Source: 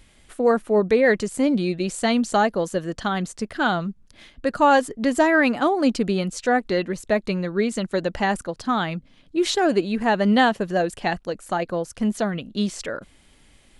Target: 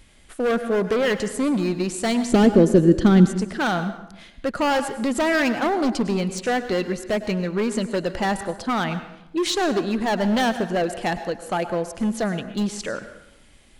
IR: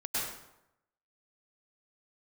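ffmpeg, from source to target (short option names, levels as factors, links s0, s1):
-filter_complex "[0:a]volume=8.91,asoftclip=hard,volume=0.112,asettb=1/sr,asplit=3[s0][s1][s2];[s0]atrim=end=2.294[s3];[s1]atrim=start=2.29:end=3.38,asetpts=PTS-STARTPTS,afade=t=in:d=0.004:c=qsin,afade=t=out:st=1.086:d=0.004:c=qsin,lowshelf=f=500:t=q:w=1.5:g=12[s4];[s2]atrim=start=3.376[s5];[s3][s4]acrossfade=d=0.004:c1=hsin:c2=qsin[s6];[s6][s5]acrossfade=d=0.004:c1=qsin:c2=hsin,asplit=2[s7][s8];[1:a]atrim=start_sample=2205[s9];[s8][s9]afir=irnorm=-1:irlink=0,volume=0.168[s10];[s7][s10]amix=inputs=2:normalize=0"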